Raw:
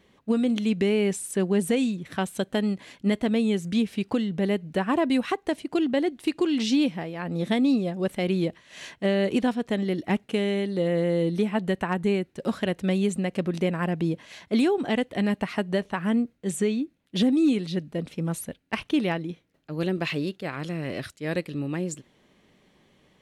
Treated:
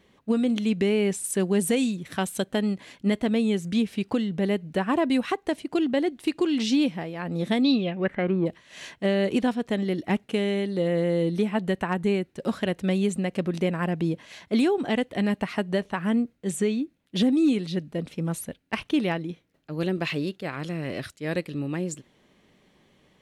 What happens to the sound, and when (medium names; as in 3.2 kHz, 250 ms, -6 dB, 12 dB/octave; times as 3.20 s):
1.24–2.43 s: treble shelf 4.8 kHz +7 dB
7.62–8.45 s: resonant low-pass 4.5 kHz -> 990 Hz